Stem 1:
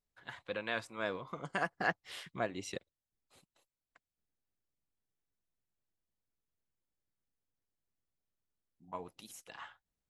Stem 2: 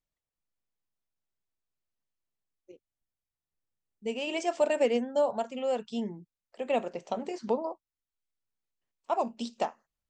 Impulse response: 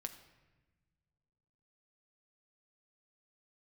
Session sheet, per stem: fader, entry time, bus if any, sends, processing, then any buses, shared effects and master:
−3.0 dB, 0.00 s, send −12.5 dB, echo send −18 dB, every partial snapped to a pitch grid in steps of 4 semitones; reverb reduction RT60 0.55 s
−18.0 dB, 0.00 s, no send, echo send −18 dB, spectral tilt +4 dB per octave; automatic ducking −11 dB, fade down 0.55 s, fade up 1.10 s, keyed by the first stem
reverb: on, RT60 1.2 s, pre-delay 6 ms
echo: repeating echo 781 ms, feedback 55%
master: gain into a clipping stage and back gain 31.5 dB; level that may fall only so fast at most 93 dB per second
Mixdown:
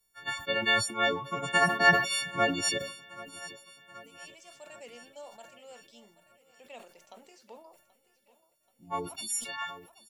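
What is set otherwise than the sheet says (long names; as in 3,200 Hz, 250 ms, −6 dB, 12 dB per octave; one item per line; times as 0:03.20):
stem 1 −3.0 dB → +6.0 dB
master: missing gain into a clipping stage and back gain 31.5 dB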